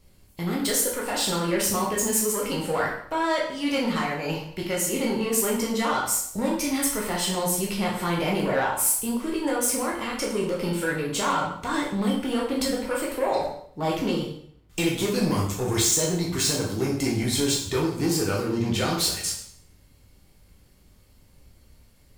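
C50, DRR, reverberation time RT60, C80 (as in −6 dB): 4.0 dB, −3.5 dB, 0.65 s, 8.0 dB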